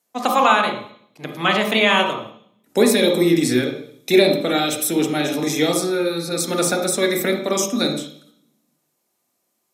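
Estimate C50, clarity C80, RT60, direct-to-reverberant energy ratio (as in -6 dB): 5.0 dB, 9.0 dB, 0.60 s, 1.5 dB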